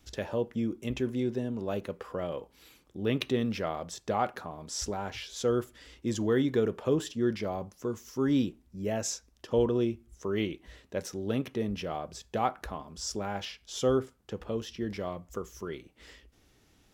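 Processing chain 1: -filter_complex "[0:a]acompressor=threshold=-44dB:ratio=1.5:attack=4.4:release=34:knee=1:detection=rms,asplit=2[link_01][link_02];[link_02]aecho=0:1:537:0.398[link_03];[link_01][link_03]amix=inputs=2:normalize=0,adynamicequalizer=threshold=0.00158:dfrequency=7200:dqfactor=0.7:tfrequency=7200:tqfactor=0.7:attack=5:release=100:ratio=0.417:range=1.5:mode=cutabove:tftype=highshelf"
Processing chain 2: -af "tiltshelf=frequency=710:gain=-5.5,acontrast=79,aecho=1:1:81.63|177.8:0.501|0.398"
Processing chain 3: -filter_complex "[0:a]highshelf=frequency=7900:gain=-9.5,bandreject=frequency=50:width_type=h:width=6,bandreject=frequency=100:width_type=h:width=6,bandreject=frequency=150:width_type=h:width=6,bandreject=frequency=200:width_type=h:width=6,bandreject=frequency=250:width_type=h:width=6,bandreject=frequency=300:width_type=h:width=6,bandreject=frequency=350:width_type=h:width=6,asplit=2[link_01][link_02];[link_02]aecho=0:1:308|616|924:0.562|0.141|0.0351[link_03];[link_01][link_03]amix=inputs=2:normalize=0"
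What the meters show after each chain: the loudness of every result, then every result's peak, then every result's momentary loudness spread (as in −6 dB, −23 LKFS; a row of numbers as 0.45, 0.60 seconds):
−38.5, −25.5, −32.0 LKFS; −20.5, −4.5, −14.0 dBFS; 9, 10, 9 LU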